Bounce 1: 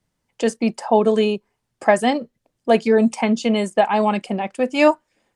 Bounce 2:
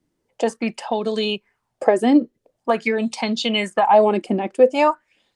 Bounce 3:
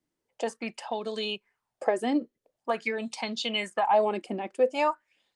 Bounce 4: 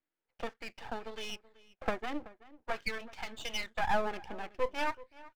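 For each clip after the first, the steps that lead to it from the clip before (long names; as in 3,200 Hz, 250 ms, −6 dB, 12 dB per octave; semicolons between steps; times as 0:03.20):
downward compressor, threshold −15 dBFS, peak gain reduction 7 dB; auto-filter bell 0.46 Hz 300–4,300 Hz +17 dB; level −3 dB
low-shelf EQ 400 Hz −8 dB; level −7 dB
loudspeaker in its box 400–3,000 Hz, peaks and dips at 400 Hz −4 dB, 590 Hz −5 dB, 1,100 Hz −7 dB, 1,500 Hz +5 dB; half-wave rectification; slap from a distant wall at 65 metres, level −19 dB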